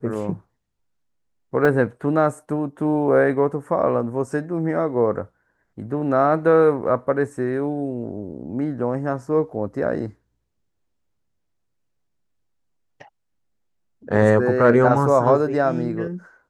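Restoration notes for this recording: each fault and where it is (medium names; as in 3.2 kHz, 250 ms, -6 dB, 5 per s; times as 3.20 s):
1.65 s: dropout 2.9 ms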